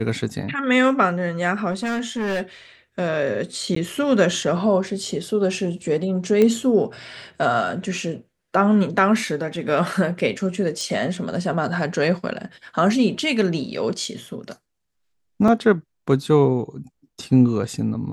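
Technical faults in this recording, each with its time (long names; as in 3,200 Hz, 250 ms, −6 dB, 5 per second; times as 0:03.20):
0:01.71–0:02.42: clipping −20.5 dBFS
0:03.75–0:03.76: drop-out 14 ms
0:06.42: click −8 dBFS
0:10.81: click
0:15.48: drop-out 3.2 ms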